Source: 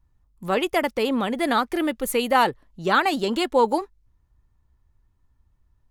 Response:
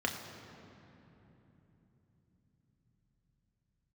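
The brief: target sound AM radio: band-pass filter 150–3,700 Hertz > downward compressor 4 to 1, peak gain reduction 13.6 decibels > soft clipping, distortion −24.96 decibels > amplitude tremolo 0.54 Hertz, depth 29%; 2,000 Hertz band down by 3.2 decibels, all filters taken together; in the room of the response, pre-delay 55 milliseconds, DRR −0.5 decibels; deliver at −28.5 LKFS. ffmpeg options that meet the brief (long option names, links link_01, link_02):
-filter_complex "[0:a]equalizer=frequency=2000:width_type=o:gain=-4,asplit=2[link_01][link_02];[1:a]atrim=start_sample=2205,adelay=55[link_03];[link_02][link_03]afir=irnorm=-1:irlink=0,volume=-6dB[link_04];[link_01][link_04]amix=inputs=2:normalize=0,highpass=150,lowpass=3700,acompressor=threshold=-26dB:ratio=4,asoftclip=threshold=-17dB,tremolo=f=0.54:d=0.29,volume=2.5dB"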